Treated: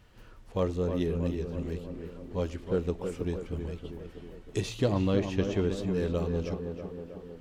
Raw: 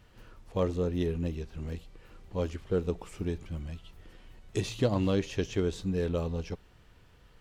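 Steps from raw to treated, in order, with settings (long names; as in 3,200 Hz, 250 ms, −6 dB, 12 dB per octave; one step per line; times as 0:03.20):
0:04.92–0:05.77: bass and treble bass +1 dB, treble −5 dB
tape delay 319 ms, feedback 70%, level −5 dB, low-pass 1,600 Hz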